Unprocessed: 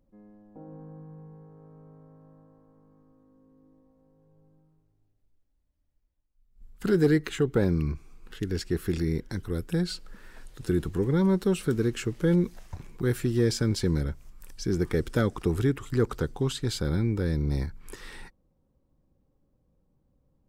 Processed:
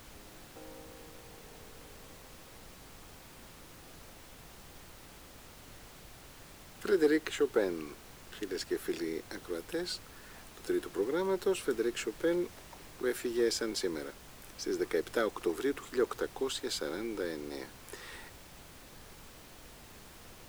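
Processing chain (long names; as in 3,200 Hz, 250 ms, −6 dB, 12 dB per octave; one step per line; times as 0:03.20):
high-pass filter 330 Hz 24 dB per octave
background noise pink −50 dBFS
level −2 dB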